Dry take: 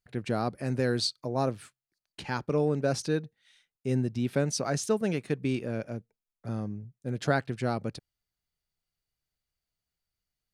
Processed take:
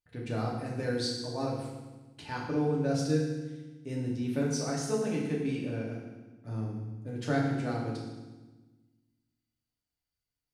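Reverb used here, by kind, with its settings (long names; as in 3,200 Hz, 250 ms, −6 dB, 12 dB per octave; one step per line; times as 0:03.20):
feedback delay network reverb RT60 1.2 s, low-frequency decay 1.5×, high-frequency decay 0.95×, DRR −4 dB
level −9 dB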